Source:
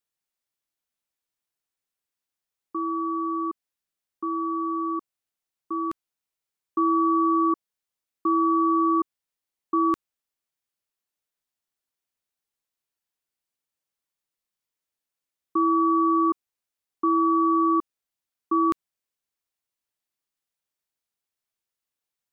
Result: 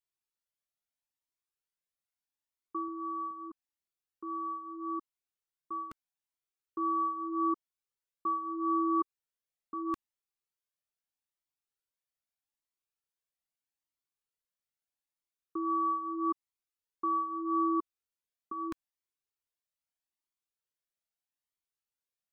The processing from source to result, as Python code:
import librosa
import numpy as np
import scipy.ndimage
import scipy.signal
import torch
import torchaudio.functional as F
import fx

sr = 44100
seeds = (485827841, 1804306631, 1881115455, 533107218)

y = fx.highpass(x, sr, hz=60.0, slope=12, at=(2.88, 3.31))
y = fx.comb_cascade(y, sr, direction='rising', hz=0.79)
y = F.gain(torch.from_numpy(y), -4.0).numpy()